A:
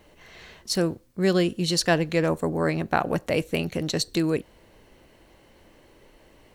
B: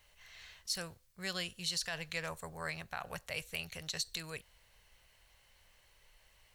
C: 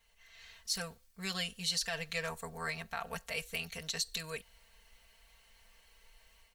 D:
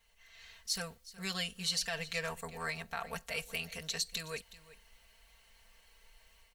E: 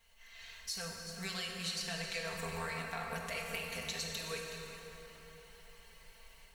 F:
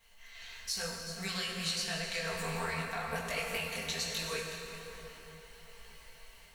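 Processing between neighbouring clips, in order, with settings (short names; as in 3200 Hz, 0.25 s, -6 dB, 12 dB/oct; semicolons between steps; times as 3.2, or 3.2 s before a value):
passive tone stack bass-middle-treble 10-0-10; limiter -21.5 dBFS, peak gain reduction 10.5 dB; gain -3 dB
comb 4.4 ms, depth 96%; AGC gain up to 7 dB; gain -7.5 dB
echo 0.369 s -17.5 dB
compressor, threshold -40 dBFS, peak gain reduction 10.5 dB; plate-style reverb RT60 4 s, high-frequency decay 0.6×, DRR -1 dB; gain +1.5 dB
detuned doubles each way 41 cents; gain +7.5 dB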